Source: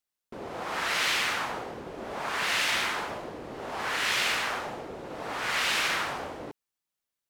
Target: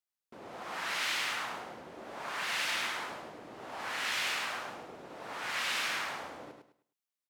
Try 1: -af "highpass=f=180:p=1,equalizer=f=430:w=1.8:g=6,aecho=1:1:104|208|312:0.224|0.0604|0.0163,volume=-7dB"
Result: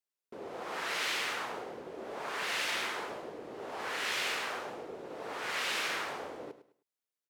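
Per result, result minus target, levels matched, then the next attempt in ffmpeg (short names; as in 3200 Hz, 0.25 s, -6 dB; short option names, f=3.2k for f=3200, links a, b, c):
500 Hz band +6.0 dB; echo-to-direct -7.5 dB
-af "highpass=f=180:p=1,equalizer=f=430:w=1.8:g=-3.5,aecho=1:1:104|208|312:0.224|0.0604|0.0163,volume=-7dB"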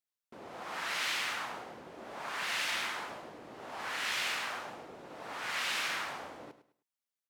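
echo-to-direct -7.5 dB
-af "highpass=f=180:p=1,equalizer=f=430:w=1.8:g=-3.5,aecho=1:1:104|208|312|416:0.531|0.143|0.0387|0.0104,volume=-7dB"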